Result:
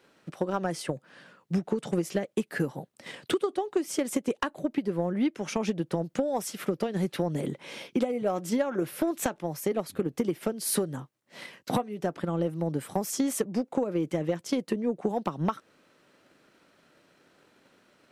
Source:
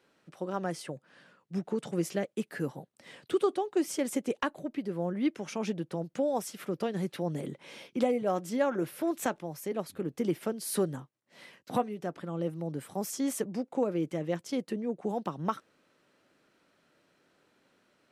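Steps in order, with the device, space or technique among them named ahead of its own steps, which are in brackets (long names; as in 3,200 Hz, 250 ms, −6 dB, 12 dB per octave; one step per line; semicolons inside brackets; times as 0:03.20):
drum-bus smash (transient designer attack +7 dB, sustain 0 dB; downward compressor 10 to 1, threshold −28 dBFS, peak gain reduction 13 dB; soft clipping −20.5 dBFS, distortion −21 dB)
level +6 dB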